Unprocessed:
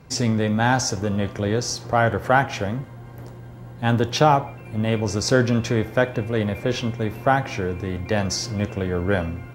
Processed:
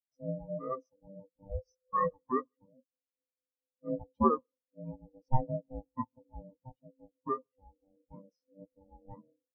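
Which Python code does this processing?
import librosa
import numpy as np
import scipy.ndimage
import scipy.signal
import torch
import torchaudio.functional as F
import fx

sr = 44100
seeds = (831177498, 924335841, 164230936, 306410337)

y = x * np.sin(2.0 * np.pi * 390.0 * np.arange(len(x)) / sr)
y = fx.comb(y, sr, ms=1.7, depth=0.72, at=(1.49, 2.13))
y = fx.echo_feedback(y, sr, ms=151, feedback_pct=51, wet_db=-17.0)
y = fx.spectral_expand(y, sr, expansion=4.0)
y = F.gain(torch.from_numpy(y), -8.5).numpy()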